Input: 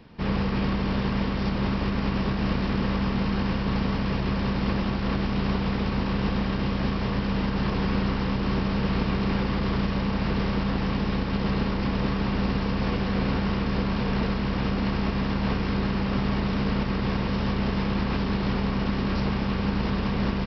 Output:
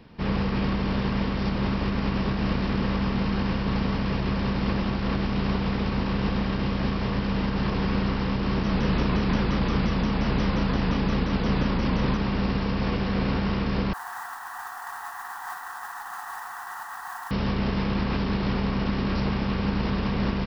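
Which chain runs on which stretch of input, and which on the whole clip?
8.63–12.17 doubler 37 ms -4.5 dB + shaped vibrato saw down 5.7 Hz, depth 160 cents
13.93–17.31 brick-wall FIR band-pass 690–2000 Hz + modulation noise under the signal 12 dB
whole clip: dry

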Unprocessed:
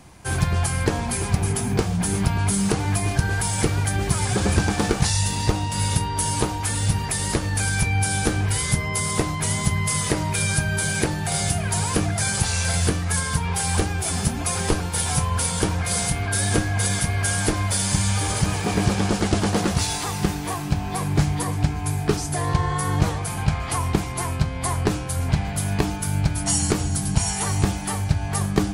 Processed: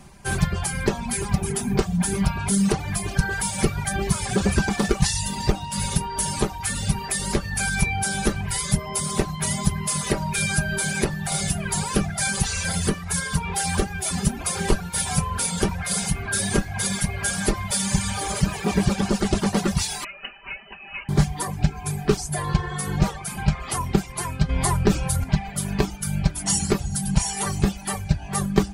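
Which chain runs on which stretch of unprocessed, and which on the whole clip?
20.04–21.09 steep high-pass 340 Hz + inverted band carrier 3300 Hz + air absorption 440 m
24.49–25.24 low shelf 160 Hz +5 dB + fast leveller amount 50%
whole clip: reverb removal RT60 1.1 s; low shelf 140 Hz +4 dB; comb 5.1 ms, depth 62%; gain -1 dB

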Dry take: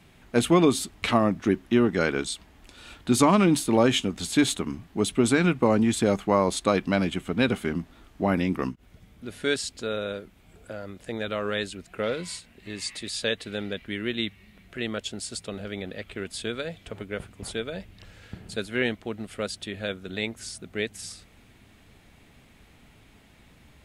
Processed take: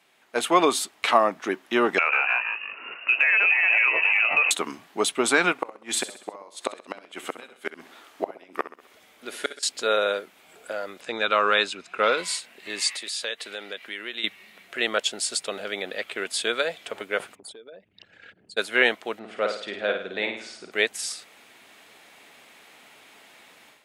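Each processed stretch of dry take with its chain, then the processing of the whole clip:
1.98–4.51 echoes that change speed 0.139 s, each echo -2 st, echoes 3, each echo -6 dB + inverted band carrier 2800 Hz + compressor, threshold -26 dBFS
5.52–9.63 bell 150 Hz -11.5 dB 0.71 oct + flipped gate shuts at -16 dBFS, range -28 dB + feedback echo 65 ms, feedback 50%, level -13 dB
11.01–12.18 LPF 6200 Hz + comb 0.8 ms, depth 35%
12.89–14.24 low shelf 220 Hz -9.5 dB + compressor 2:1, threshold -41 dBFS
17.35–18.57 formant sharpening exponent 2 + compressor 16:1, threshold -44 dBFS
19.19–20.72 tape spacing loss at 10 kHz 25 dB + flutter echo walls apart 9.1 m, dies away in 0.61 s
whole clip: HPF 540 Hz 12 dB/oct; dynamic EQ 930 Hz, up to +5 dB, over -38 dBFS, Q 0.73; AGC gain up to 11.5 dB; gain -3 dB

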